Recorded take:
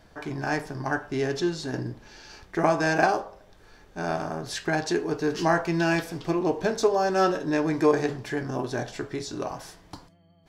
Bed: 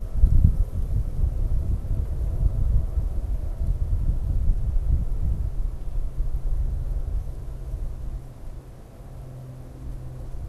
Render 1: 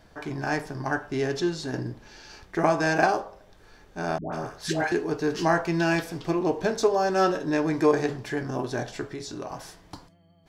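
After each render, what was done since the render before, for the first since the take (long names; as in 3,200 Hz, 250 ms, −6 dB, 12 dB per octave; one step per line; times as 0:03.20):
0:04.18–0:04.92: all-pass dispersion highs, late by 147 ms, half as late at 720 Hz
0:09.09–0:09.52: downward compressor 2 to 1, threshold −34 dBFS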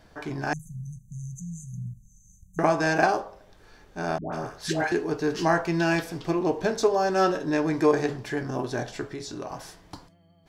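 0:00.53–0:02.59: linear-phase brick-wall band-stop 210–6,000 Hz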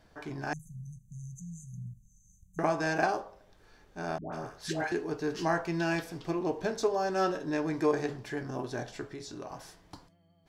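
level −6.5 dB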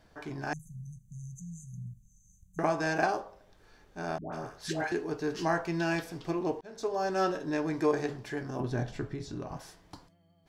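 0:06.61–0:07.04: fade in
0:08.60–0:09.57: bass and treble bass +11 dB, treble −5 dB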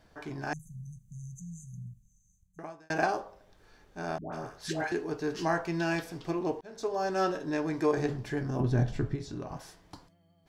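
0:01.66–0:02.90: fade out
0:07.97–0:09.16: low-shelf EQ 220 Hz +10 dB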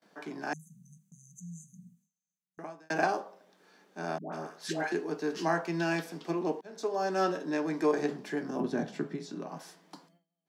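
Butterworth high-pass 160 Hz 72 dB per octave
noise gate with hold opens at −56 dBFS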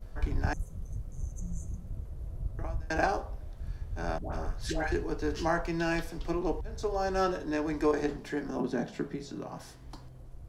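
mix in bed −13.5 dB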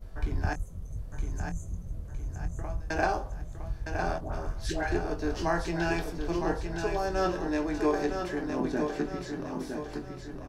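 double-tracking delay 23 ms −9.5 dB
repeating echo 961 ms, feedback 44%, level −6 dB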